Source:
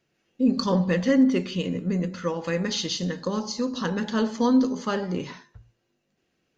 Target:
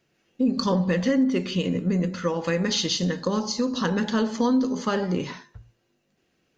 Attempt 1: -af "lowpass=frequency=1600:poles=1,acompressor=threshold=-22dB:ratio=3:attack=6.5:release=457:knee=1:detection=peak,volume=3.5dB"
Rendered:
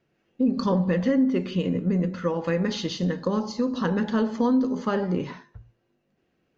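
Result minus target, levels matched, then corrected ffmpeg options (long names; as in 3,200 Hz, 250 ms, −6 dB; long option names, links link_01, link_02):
2,000 Hz band −2.5 dB
-af "acompressor=threshold=-22dB:ratio=3:attack=6.5:release=457:knee=1:detection=peak,volume=3.5dB"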